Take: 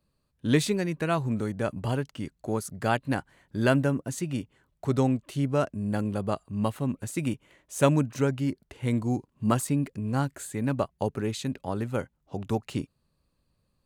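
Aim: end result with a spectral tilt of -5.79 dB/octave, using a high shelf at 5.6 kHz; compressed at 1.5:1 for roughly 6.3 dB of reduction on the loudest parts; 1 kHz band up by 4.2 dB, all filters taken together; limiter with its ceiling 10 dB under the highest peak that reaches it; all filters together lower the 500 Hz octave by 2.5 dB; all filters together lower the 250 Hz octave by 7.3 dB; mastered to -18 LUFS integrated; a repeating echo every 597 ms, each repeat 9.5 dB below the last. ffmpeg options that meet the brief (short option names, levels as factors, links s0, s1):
-af "equalizer=f=250:t=o:g=-9,equalizer=f=500:t=o:g=-3,equalizer=f=1000:t=o:g=7.5,highshelf=f=5600:g=-7,acompressor=threshold=0.0178:ratio=1.5,alimiter=limit=0.0631:level=0:latency=1,aecho=1:1:597|1194|1791|2388:0.335|0.111|0.0365|0.012,volume=8.91"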